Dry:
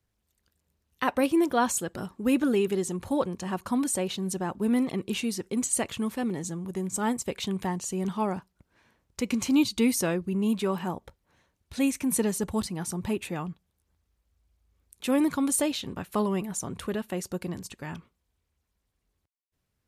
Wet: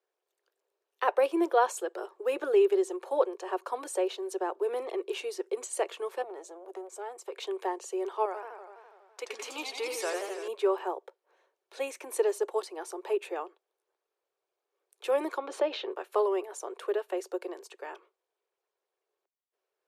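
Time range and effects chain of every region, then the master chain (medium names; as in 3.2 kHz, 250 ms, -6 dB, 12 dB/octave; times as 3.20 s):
6.22–7.38 s: high-pass 76 Hz + compression 3:1, threshold -34 dBFS + transformer saturation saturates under 580 Hz
8.25–10.48 s: peaking EQ 380 Hz -10 dB 1.6 oct + modulated delay 83 ms, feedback 74%, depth 215 cents, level -5 dB
15.38–15.92 s: distance through air 230 m + level flattener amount 50%
whole clip: steep high-pass 370 Hz 72 dB/octave; tilt EQ -3.5 dB/octave; band-stop 2 kHz, Q 20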